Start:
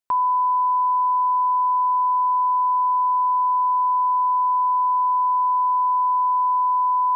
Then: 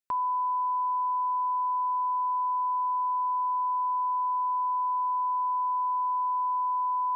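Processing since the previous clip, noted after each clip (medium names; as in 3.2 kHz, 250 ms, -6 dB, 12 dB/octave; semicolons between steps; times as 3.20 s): peaking EQ 900 Hz -5 dB 0.77 oct; trim -4 dB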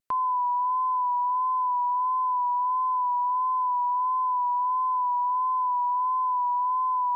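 vibrato 1.5 Hz 36 cents; trim +2.5 dB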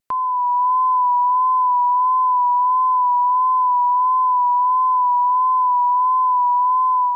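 level rider gain up to 4.5 dB; trim +4.5 dB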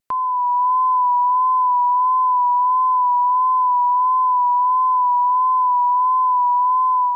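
no audible change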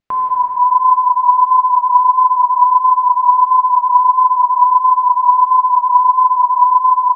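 distance through air 160 m; plate-style reverb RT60 3.5 s, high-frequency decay 0.9×, DRR -1.5 dB; trim +3.5 dB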